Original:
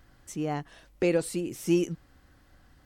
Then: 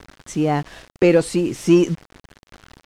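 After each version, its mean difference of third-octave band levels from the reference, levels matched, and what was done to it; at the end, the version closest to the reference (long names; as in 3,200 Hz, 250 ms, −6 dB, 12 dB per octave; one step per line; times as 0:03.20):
2.5 dB: in parallel at −5 dB: soft clipping −25 dBFS, distortion −10 dB
on the sum: bit reduction 8 bits
high-frequency loss of the air 57 metres
level +8.5 dB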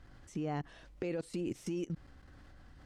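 4.5 dB: low-shelf EQ 220 Hz +3 dB
downward compressor 5 to 1, threshold −31 dBFS, peak gain reduction 12 dB
high-frequency loss of the air 53 metres
output level in coarse steps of 20 dB
level +4.5 dB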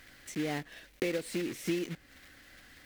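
7.5 dB: one scale factor per block 3 bits
octave-band graphic EQ 250/500/1,000/2,000/4,000 Hz +6/+5/−4/+11/+4 dB
downward compressor 6 to 1, threshold −23 dBFS, peak gain reduction 9.5 dB
one half of a high-frequency compander encoder only
level −6 dB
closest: first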